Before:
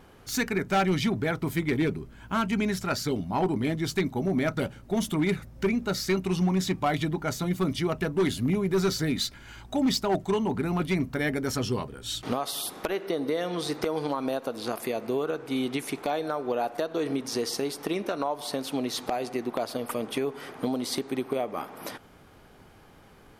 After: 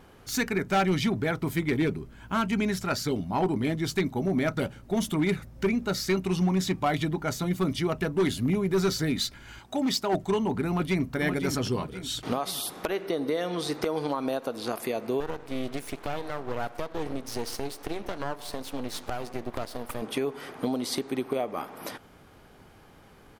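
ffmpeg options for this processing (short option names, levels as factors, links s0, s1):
-filter_complex "[0:a]asettb=1/sr,asplit=3[s0][s1][s2];[s0]atrim=end=9.594[s3];[s1]atrim=start=9.59:end=10.13,asetpts=PTS-STARTPTS,afade=t=in:d=0.004:c=qsin,afade=t=out:st=0.536:d=0.004:c=qsin,highpass=f=250:p=1[s4];[s2]atrim=start=10.126[s5];[s3][s4]acrossfade=d=0.004:c1=hsin:c2=qsin[s6];[s6][s5]acrossfade=d=0.004:c1=qsin:c2=hsin,asplit=2[s7][s8];[s8]afade=t=in:st=10.69:d=0.01,afade=t=out:st=11.15:d=0.01,aecho=0:1:520|1040|1560|2080|2600:0.446684|0.201008|0.0904534|0.040704|0.0183168[s9];[s7][s9]amix=inputs=2:normalize=0,asettb=1/sr,asplit=3[s10][s11][s12];[s10]atrim=end=15.204[s13];[s11]atrim=start=15.2:end=20.02,asetpts=PTS-STARTPTS,afade=t=in:d=0.004:c=qsin,afade=t=out:st=4.816:d=0.004:c=qsin,aeval=exprs='max(val(0),0)':c=same[s14];[s12]atrim=start=20.016[s15];[s13][s14]acrossfade=d=0.004:c1=hsin:c2=qsin[s16];[s16][s15]acrossfade=d=0.004:c1=qsin:c2=hsin"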